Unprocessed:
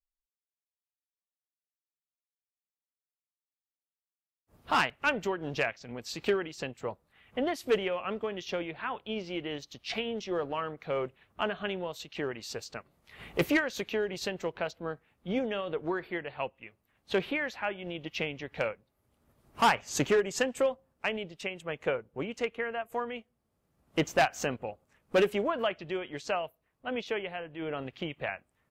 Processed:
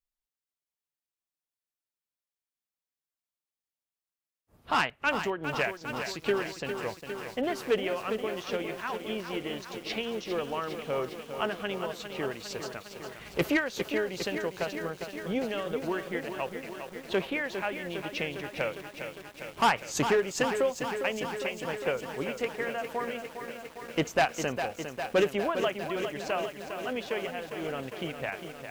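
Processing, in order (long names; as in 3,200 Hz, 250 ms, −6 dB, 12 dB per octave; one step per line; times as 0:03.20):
feedback echo at a low word length 405 ms, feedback 80%, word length 8 bits, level −8 dB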